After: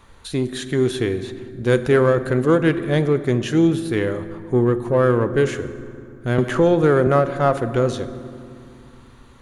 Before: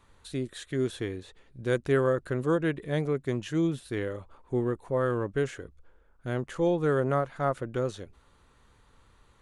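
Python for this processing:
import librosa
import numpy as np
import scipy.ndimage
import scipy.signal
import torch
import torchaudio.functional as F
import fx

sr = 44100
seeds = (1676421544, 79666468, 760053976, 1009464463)

p1 = fx.notch(x, sr, hz=8000.0, q=8.7)
p2 = 10.0 ** (-27.5 / 20.0) * np.tanh(p1 / 10.0 ** (-27.5 / 20.0))
p3 = p1 + F.gain(torch.from_numpy(p2), -5.0).numpy()
p4 = fx.rev_fdn(p3, sr, rt60_s=2.3, lf_ratio=1.55, hf_ratio=0.55, size_ms=26.0, drr_db=11.0)
p5 = fx.band_squash(p4, sr, depth_pct=70, at=(6.38, 7.07))
y = F.gain(torch.from_numpy(p5), 7.5).numpy()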